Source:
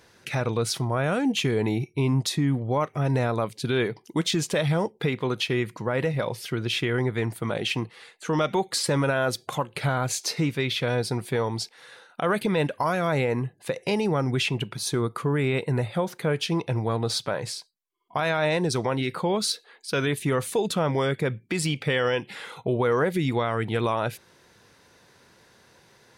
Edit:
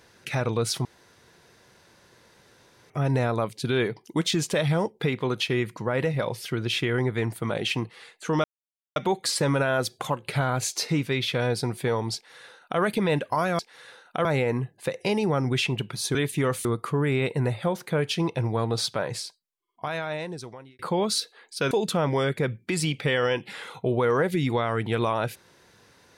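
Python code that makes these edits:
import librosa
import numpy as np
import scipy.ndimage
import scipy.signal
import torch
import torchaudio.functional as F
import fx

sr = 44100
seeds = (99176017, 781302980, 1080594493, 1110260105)

y = fx.edit(x, sr, fx.room_tone_fill(start_s=0.85, length_s=2.05),
    fx.insert_silence(at_s=8.44, length_s=0.52),
    fx.duplicate(start_s=11.63, length_s=0.66, to_s=13.07),
    fx.fade_out_span(start_s=17.49, length_s=1.62),
    fx.move(start_s=20.03, length_s=0.5, to_s=14.97), tone=tone)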